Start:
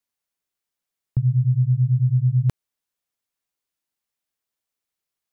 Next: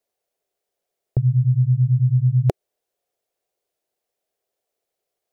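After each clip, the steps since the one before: band shelf 520 Hz +14.5 dB 1.3 oct; gain +1.5 dB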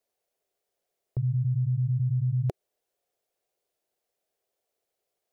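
limiter -20 dBFS, peak gain reduction 10.5 dB; gain -1.5 dB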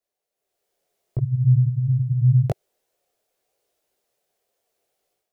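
AGC gain up to 11.5 dB; detuned doubles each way 27 cents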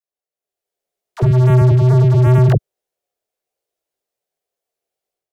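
sample leveller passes 5; dispersion lows, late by 61 ms, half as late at 480 Hz; gain +1.5 dB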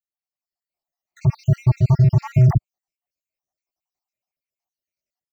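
random spectral dropouts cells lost 62%; fixed phaser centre 2300 Hz, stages 8

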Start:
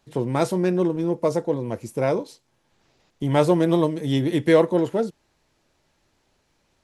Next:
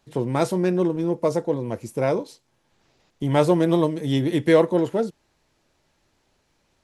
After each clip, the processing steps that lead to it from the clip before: nothing audible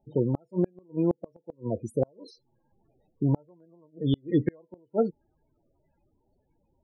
loudest bins only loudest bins 16; flipped gate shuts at -13 dBFS, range -38 dB

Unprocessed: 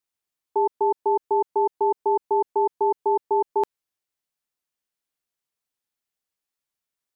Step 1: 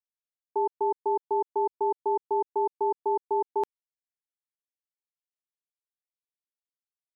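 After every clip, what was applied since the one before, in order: bit-crush 12-bit; gain -5 dB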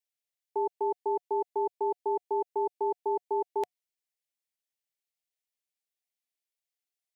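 EQ curve 110 Hz 0 dB, 170 Hz -4 dB, 720 Hz +10 dB, 1100 Hz -6 dB, 2000 Hz +11 dB; gain -6.5 dB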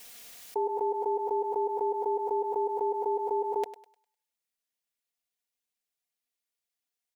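comb 4.2 ms; thinning echo 0.101 s, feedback 38%, high-pass 570 Hz, level -12 dB; backwards sustainer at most 38 dB/s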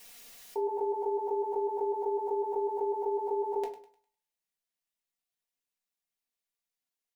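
shoebox room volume 180 m³, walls furnished, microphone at 1.1 m; gain -4.5 dB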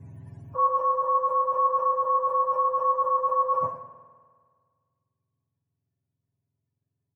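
spectrum mirrored in octaves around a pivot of 670 Hz; comb 7.3 ms, depth 76%; spring tank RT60 1.8 s, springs 49 ms, chirp 25 ms, DRR 9 dB; gain +6 dB

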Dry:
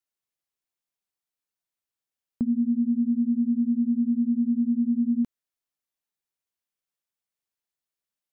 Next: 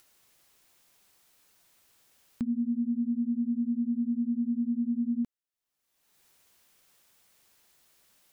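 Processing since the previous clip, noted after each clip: upward compressor, threshold -35 dBFS; gain -5.5 dB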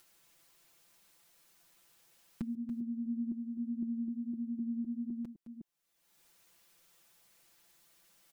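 reverse delay 0.255 s, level -10.5 dB; comb 5.9 ms, depth 92%; gain -4.5 dB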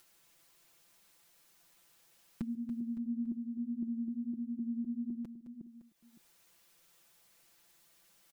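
echo 0.562 s -15 dB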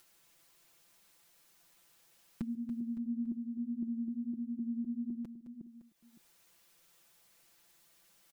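nothing audible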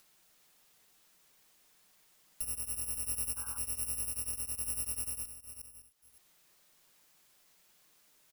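FFT order left unsorted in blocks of 256 samples; painted sound noise, 3.36–3.59, 780–1600 Hz -54 dBFS

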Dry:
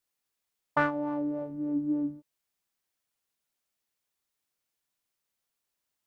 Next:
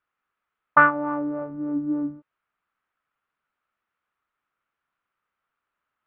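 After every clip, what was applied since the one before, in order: LPF 2800 Hz 24 dB/oct; bell 1300 Hz +14 dB 0.7 oct; gain +3 dB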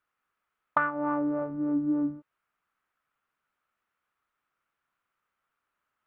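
compressor 16:1, threshold -22 dBFS, peak gain reduction 13 dB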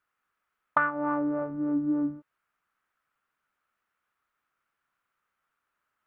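bell 1600 Hz +2.5 dB 0.77 oct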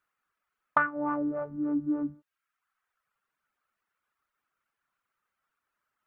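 reverb removal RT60 0.87 s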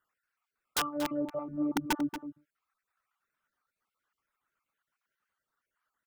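random spectral dropouts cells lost 36%; wrapped overs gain 22.5 dB; outdoor echo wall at 40 m, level -10 dB

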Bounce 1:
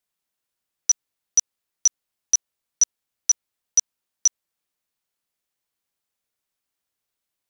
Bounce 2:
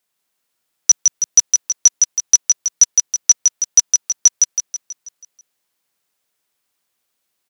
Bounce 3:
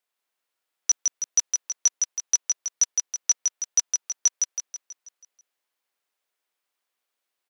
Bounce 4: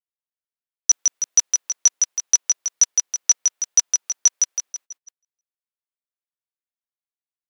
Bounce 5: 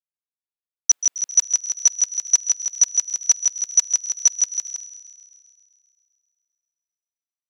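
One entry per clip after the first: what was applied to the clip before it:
HPF 150 Hz 6 dB/oct; feedback echo 0.162 s, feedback 51%, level -4 dB; gain +8 dB
tone controls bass -15 dB, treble -6 dB; gain -5.5 dB
gate -45 dBFS, range -28 dB; gain +5.5 dB
gate with hold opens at -28 dBFS; thin delay 0.132 s, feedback 68%, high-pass 2100 Hz, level -14.5 dB

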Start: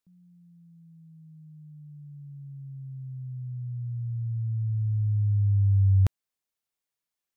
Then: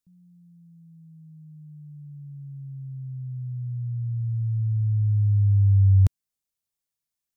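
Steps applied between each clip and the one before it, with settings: tone controls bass +9 dB, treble +7 dB; gain -5 dB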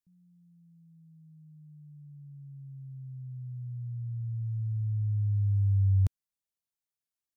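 short-mantissa float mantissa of 8-bit; gain -7.5 dB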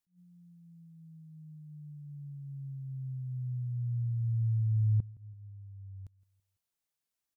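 flipped gate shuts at -26 dBFS, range -26 dB; feedback echo 0.166 s, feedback 40%, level -22.5 dB; attack slew limiter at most 220 dB/s; gain +3.5 dB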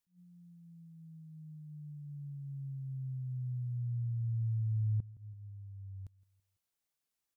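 compressor 1.5:1, threshold -39 dBFS, peak gain reduction 5.5 dB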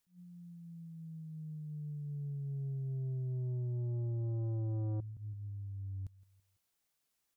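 soft clip -39.5 dBFS, distortion -8 dB; gain +5.5 dB

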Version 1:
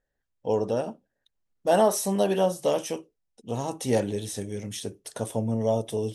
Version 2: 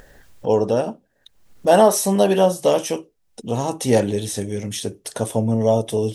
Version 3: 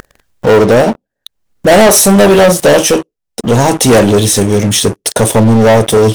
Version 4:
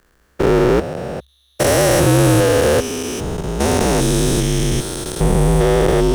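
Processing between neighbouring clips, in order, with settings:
upward compressor, threshold -34 dBFS; gain +7.5 dB
sample leveller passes 5
stepped spectrum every 0.4 s; frequency shift -67 Hz; gain -4 dB

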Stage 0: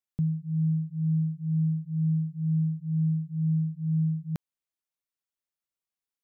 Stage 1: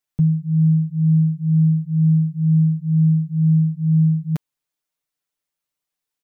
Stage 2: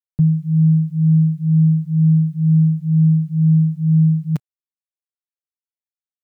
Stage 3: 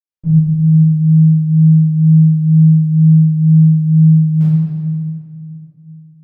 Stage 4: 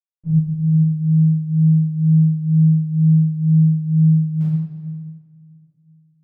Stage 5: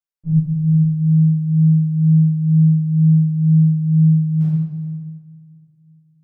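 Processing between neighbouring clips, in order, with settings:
comb 6.7 ms, depth 80%; gain +5.5 dB
bell 130 Hz +4 dB 0.61 oct; bit-crush 11-bit
reverb RT60 2.3 s, pre-delay 46 ms
upward expander 1.5:1, over -27 dBFS; gain -5 dB
shoebox room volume 33 m³, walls mixed, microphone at 0.35 m; gain -1 dB

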